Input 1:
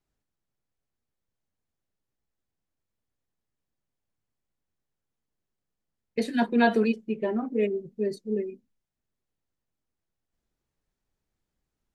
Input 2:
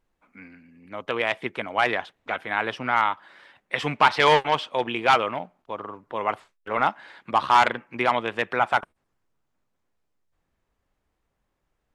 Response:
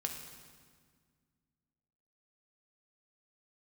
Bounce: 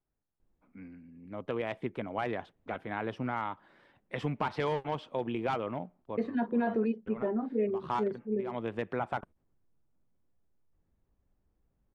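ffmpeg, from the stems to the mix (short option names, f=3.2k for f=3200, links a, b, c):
-filter_complex "[0:a]alimiter=limit=-17dB:level=0:latency=1:release=50,lowpass=1.5k,volume=-3.5dB,asplit=2[a][b];[1:a]tiltshelf=f=640:g=9.5,acompressor=threshold=-22dB:ratio=4,adelay=400,volume=-6.5dB[c];[b]apad=whole_len=544434[d];[c][d]sidechaincompress=threshold=-43dB:ratio=6:attack=8.3:release=139[e];[a][e]amix=inputs=2:normalize=0"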